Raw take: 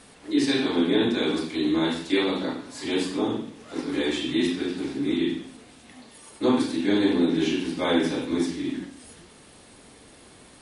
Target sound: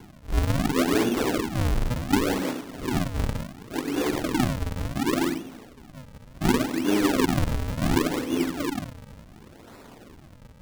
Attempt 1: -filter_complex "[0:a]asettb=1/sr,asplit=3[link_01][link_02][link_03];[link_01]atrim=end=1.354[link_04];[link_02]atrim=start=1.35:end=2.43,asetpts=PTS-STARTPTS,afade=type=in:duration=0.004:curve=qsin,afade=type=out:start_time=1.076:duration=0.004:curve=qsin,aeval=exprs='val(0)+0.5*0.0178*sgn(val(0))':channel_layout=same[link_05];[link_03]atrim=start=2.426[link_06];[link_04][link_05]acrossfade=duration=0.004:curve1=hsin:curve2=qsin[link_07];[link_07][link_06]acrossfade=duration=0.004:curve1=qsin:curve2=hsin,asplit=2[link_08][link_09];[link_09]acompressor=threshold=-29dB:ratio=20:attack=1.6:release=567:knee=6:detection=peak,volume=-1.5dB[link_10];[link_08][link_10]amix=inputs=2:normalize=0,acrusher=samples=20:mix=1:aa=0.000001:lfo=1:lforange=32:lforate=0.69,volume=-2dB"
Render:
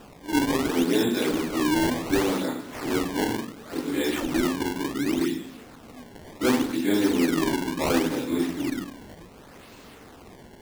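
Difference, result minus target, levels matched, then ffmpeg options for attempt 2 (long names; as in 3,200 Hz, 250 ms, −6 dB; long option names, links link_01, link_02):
sample-and-hold swept by an LFO: distortion −14 dB
-filter_complex "[0:a]asettb=1/sr,asplit=3[link_01][link_02][link_03];[link_01]atrim=end=1.354[link_04];[link_02]atrim=start=1.35:end=2.43,asetpts=PTS-STARTPTS,afade=type=in:duration=0.004:curve=qsin,afade=type=out:start_time=1.076:duration=0.004:curve=qsin,aeval=exprs='val(0)+0.5*0.0178*sgn(val(0))':channel_layout=same[link_05];[link_03]atrim=start=2.426[link_06];[link_04][link_05]acrossfade=duration=0.004:curve1=hsin:curve2=qsin[link_07];[link_07][link_06]acrossfade=duration=0.004:curve1=qsin:curve2=hsin,asplit=2[link_08][link_09];[link_09]acompressor=threshold=-29dB:ratio=20:attack=1.6:release=567:knee=6:detection=peak,volume=-1.5dB[link_10];[link_08][link_10]amix=inputs=2:normalize=0,acrusher=samples=70:mix=1:aa=0.000001:lfo=1:lforange=112:lforate=0.69,volume=-2dB"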